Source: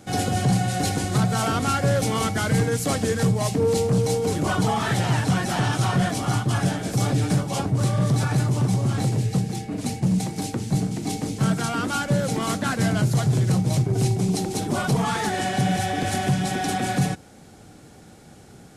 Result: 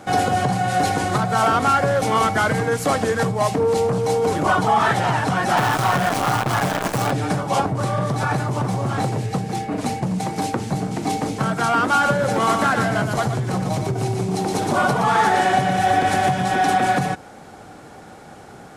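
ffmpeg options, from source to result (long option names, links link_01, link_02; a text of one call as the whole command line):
ffmpeg -i in.wav -filter_complex "[0:a]asettb=1/sr,asplit=3[link_01][link_02][link_03];[link_01]atrim=end=5.574[link_04];[link_02]atrim=start=5.57:end=7.11,asetpts=PTS-STARTPTS,afade=type=in:duration=0.004:curve=qsin,afade=type=out:start_time=1.536:duration=0.004:curve=qsin,acrusher=bits=5:dc=4:mix=0:aa=0.000001[link_05];[link_03]atrim=start=7.106[link_06];[link_04][link_05]acrossfade=duration=0.004:curve1=hsin:curve2=qsin[link_07];[link_07][link_06]acrossfade=duration=0.004:curve1=qsin:curve2=hsin,asettb=1/sr,asplit=3[link_08][link_09][link_10];[link_08]atrim=end=8.564[link_11];[link_09]atrim=start=8.56:end=9.09,asetpts=PTS-STARTPTS,afade=type=in:duration=0.004:curve=qsin,afade=type=out:start_time=0.526:duration=0.004:curve=qsin,asoftclip=type=hard:threshold=-16.5dB[link_12];[link_10]atrim=start=9.086[link_13];[link_11][link_12]acrossfade=duration=0.004:curve1=hsin:curve2=qsin[link_14];[link_14][link_13]acrossfade=duration=0.004:curve1=qsin:curve2=hsin,asettb=1/sr,asplit=3[link_15][link_16][link_17];[link_15]atrim=end=11.914[link_18];[link_16]atrim=start=11.91:end=16.54,asetpts=PTS-STARTPTS,afade=type=in:duration=0.004:curve=qsin,afade=type=out:start_time=4.626:duration=0.004:curve=qsin,aecho=1:1:118:0.562,atrim=end_sample=204183[link_19];[link_17]atrim=start=16.536[link_20];[link_18][link_19]acrossfade=duration=0.004:curve1=hsin:curve2=qsin[link_21];[link_21][link_20]acrossfade=duration=0.004:curve1=qsin:curve2=hsin,acompressor=threshold=-22dB:ratio=6,equalizer=frequency=980:width_type=o:width=2.6:gain=13" out.wav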